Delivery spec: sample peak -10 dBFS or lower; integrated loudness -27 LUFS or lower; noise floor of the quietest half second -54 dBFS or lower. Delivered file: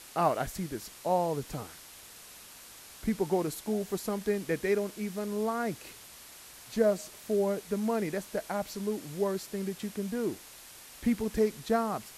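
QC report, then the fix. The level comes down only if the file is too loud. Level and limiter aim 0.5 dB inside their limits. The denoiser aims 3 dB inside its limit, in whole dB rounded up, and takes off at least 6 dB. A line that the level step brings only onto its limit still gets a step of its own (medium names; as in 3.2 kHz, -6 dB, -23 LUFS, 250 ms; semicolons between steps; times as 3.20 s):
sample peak -14.0 dBFS: pass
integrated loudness -32.0 LUFS: pass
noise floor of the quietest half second -50 dBFS: fail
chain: noise reduction 7 dB, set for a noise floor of -50 dBFS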